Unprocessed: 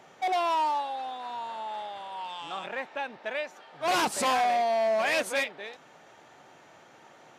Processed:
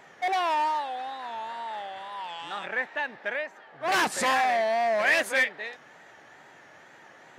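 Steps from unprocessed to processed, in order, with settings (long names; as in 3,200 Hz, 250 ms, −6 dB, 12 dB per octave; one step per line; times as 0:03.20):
0:03.35–0:03.92: high-shelf EQ 2,300 Hz −9 dB
tape wow and flutter 93 cents
parametric band 1,800 Hz +9.5 dB 0.47 octaves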